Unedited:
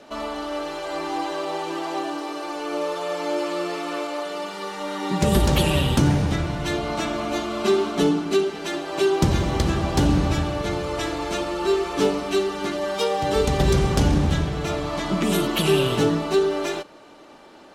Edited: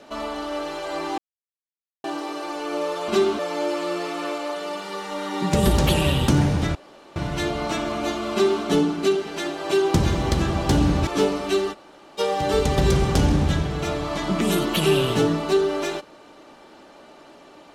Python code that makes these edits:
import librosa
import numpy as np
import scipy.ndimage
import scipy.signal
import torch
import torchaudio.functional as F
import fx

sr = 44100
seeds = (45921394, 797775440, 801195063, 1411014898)

y = fx.edit(x, sr, fx.silence(start_s=1.18, length_s=0.86),
    fx.insert_room_tone(at_s=6.44, length_s=0.41),
    fx.duplicate(start_s=7.6, length_s=0.31, to_s=3.08),
    fx.cut(start_s=10.35, length_s=1.54),
    fx.room_tone_fill(start_s=12.55, length_s=0.46, crossfade_s=0.04), tone=tone)